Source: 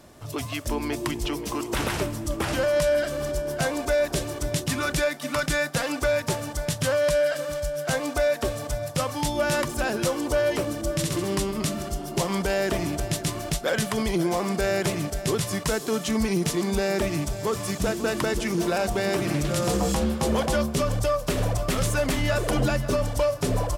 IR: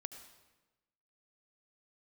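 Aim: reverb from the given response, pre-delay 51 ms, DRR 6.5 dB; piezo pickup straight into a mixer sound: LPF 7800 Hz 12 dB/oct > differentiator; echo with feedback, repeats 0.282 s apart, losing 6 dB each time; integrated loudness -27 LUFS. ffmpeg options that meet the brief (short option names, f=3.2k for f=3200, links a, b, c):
-filter_complex "[0:a]aecho=1:1:282|564|846|1128|1410|1692:0.501|0.251|0.125|0.0626|0.0313|0.0157,asplit=2[a][b];[1:a]atrim=start_sample=2205,adelay=51[c];[b][c]afir=irnorm=-1:irlink=0,volume=-3dB[d];[a][d]amix=inputs=2:normalize=0,lowpass=7.8k,aderivative,volume=8.5dB"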